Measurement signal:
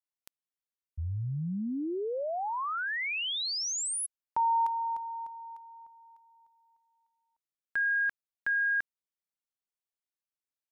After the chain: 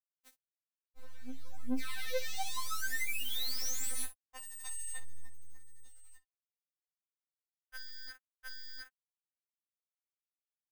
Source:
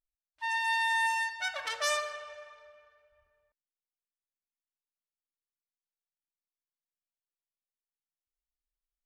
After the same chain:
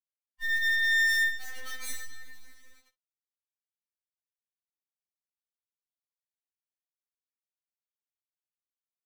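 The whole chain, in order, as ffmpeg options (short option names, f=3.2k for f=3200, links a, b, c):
-filter_complex "[0:a]adynamicequalizer=threshold=0.00316:dfrequency=100:dqfactor=2.4:tfrequency=100:tqfactor=2.4:attack=5:release=100:ratio=0.375:range=2:mode=cutabove:tftype=bell,acrossover=split=170|5500[a][b][c];[a]acompressor=threshold=-49dB:ratio=2.5:attack=2.7:release=114:knee=2.83:detection=peak[d];[d][b][c]amix=inputs=3:normalize=0,aeval=exprs='(mod(10.6*val(0)+1,2)-1)/10.6':c=same,acrusher=bits=6:dc=4:mix=0:aa=0.000001,aecho=1:1:16|57:0.398|0.133,asoftclip=type=tanh:threshold=-31.5dB,afftfilt=real='re*3.46*eq(mod(b,12),0)':imag='im*3.46*eq(mod(b,12),0)':win_size=2048:overlap=0.75,volume=1.5dB"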